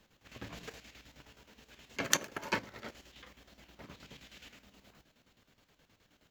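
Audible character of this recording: chopped level 9.5 Hz, depth 60%, duty 60%

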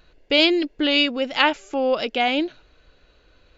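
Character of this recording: noise floor -59 dBFS; spectral tilt +1.5 dB/oct

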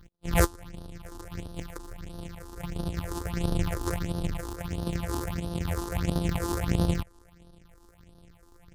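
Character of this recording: a buzz of ramps at a fixed pitch in blocks of 256 samples; phasing stages 6, 1.5 Hz, lowest notch 150–2200 Hz; MP3

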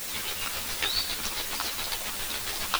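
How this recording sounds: chopped level 7.3 Hz, depth 60%, duty 30%; a quantiser's noise floor 6-bit, dither triangular; a shimmering, thickened sound

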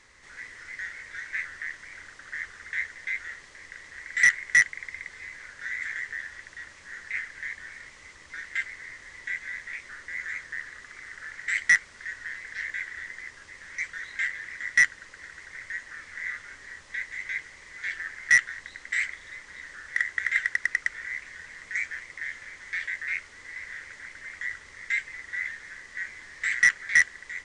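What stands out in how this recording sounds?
noise floor -50 dBFS; spectral tilt +1.0 dB/oct

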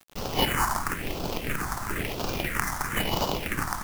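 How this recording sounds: aliases and images of a low sample rate 3900 Hz, jitter 20%; phasing stages 4, 1 Hz, lowest notch 450–1900 Hz; a quantiser's noise floor 8-bit, dither none

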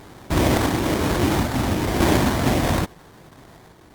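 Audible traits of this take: a buzz of ramps at a fixed pitch in blocks of 8 samples; random-step tremolo; aliases and images of a low sample rate 2700 Hz, jitter 20%; Opus

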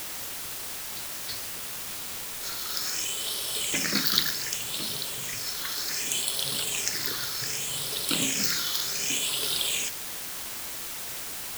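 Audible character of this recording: phasing stages 6, 0.66 Hz, lowest notch 670–2000 Hz; a quantiser's noise floor 6-bit, dither triangular

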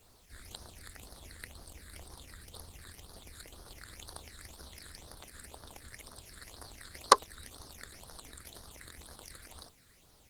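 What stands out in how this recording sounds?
phasing stages 8, 2 Hz, lowest notch 800–2500 Hz; a quantiser's noise floor 12-bit, dither triangular; Opus

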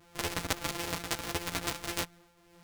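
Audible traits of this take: a buzz of ramps at a fixed pitch in blocks of 256 samples; tremolo triangle 1.6 Hz, depth 60%; a shimmering, thickened sound

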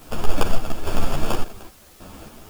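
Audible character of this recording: aliases and images of a low sample rate 2000 Hz, jitter 0%; random-step tremolo, depth 85%; a quantiser's noise floor 10-bit, dither triangular; a shimmering, thickened sound

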